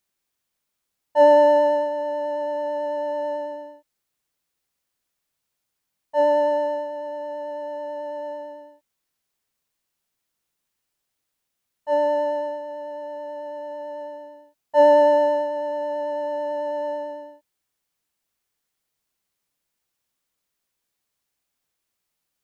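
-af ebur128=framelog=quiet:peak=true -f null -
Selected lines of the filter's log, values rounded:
Integrated loudness:
  I:         -22.0 LUFS
  Threshold: -33.4 LUFS
Loudness range:
  LRA:        14.2 LU
  Threshold: -45.9 LUFS
  LRA low:   -35.5 LUFS
  LRA high:  -21.2 LUFS
True peak:
  Peak:       -5.2 dBFS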